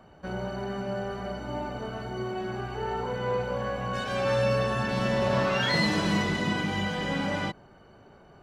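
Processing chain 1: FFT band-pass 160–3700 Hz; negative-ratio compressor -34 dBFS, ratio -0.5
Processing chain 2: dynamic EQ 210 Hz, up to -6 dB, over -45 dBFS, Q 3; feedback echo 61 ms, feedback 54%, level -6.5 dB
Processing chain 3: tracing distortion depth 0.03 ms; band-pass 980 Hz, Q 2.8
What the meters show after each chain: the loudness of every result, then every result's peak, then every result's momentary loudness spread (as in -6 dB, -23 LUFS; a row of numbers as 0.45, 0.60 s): -34.0, -28.5, -38.0 LUFS; -18.0, -13.0, -22.0 dBFS; 14, 10, 10 LU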